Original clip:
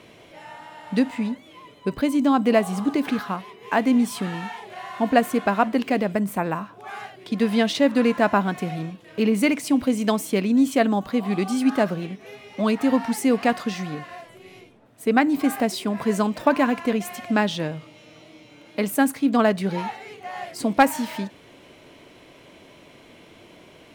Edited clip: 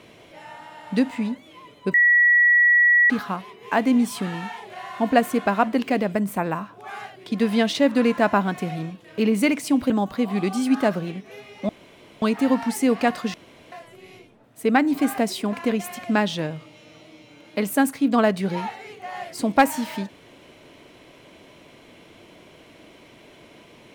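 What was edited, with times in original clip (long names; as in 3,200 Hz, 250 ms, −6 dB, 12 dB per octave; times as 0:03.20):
0:01.94–0:03.10: beep over 1,930 Hz −12.5 dBFS
0:09.90–0:10.85: remove
0:12.64: splice in room tone 0.53 s
0:13.76–0:14.14: fill with room tone
0:15.95–0:16.74: remove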